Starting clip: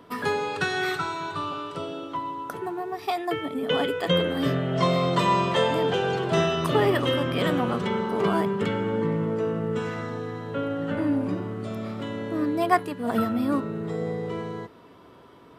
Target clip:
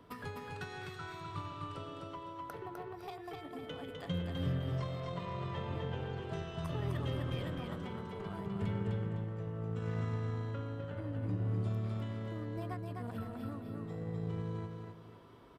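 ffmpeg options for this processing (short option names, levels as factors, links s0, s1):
-filter_complex "[0:a]asettb=1/sr,asplit=3[s0][s1][s2];[s0]atrim=end=2.504[s3];[s1]atrim=start=2.5:end=2.93,asetpts=PTS-STARTPTS,afade=t=in:d=0.004:c=qsin,afade=t=out:st=0.426:d=0.004:c=qsin,equalizer=f=500:t=o:w=1:g=9,equalizer=f=1000:t=o:w=1:g=3,equalizer=f=2000:t=o:w=1:g=7,equalizer=f=4000:t=o:w=1:g=8,equalizer=f=8000:t=o:w=1:g=-6[s4];[s2]atrim=start=2.926[s5];[s3][s4]acrossfade=d=0.004:c1=hsin:c2=qsin[s6];[s6][s5]acrossfade=d=0.004:c1=qsin:c2=hsin,asettb=1/sr,asplit=3[s7][s8][s9];[s7]atrim=end=5.004[s10];[s8]atrim=start=5:end=6.21,asetpts=PTS-STARTPTS,afade=t=in:d=0.004:c=qsin,afade=t=out:st=1.206:d=0.004:c=qsin,acrossover=split=4000[s11][s12];[s12]acompressor=threshold=0.00224:ratio=4:attack=1:release=60[s13];[s11][s13]amix=inputs=2:normalize=0[s14];[s9]atrim=start=6.206[s15];[s10][s14]acrossfade=d=0.004:c1=hsin:c2=qsin[s16];[s16][s15]acrossfade=d=0.004:c1=qsin:c2=hsin,acrossover=split=120[s17][s18];[s17]aphaser=in_gain=1:out_gain=1:delay=1.4:decay=0.71:speed=0.7:type=triangular[s19];[s18]acompressor=threshold=0.0158:ratio=8[s20];[s19][s20]amix=inputs=2:normalize=0,aeval=exprs='0.1*(cos(1*acos(clip(val(0)/0.1,-1,1)))-cos(1*PI/2))+0.00501*(cos(7*acos(clip(val(0)/0.1,-1,1)))-cos(7*PI/2))':c=same,asplit=2[s21][s22];[s22]aecho=0:1:254|508|762|1016:0.668|0.227|0.0773|0.0263[s23];[s21][s23]amix=inputs=2:normalize=0,volume=0.501"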